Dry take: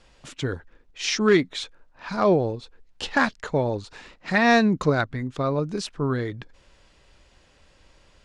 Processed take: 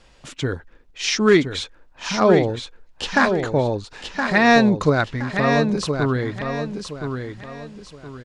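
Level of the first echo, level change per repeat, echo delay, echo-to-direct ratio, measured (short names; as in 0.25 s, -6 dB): -6.5 dB, -10.0 dB, 1.019 s, -6.0 dB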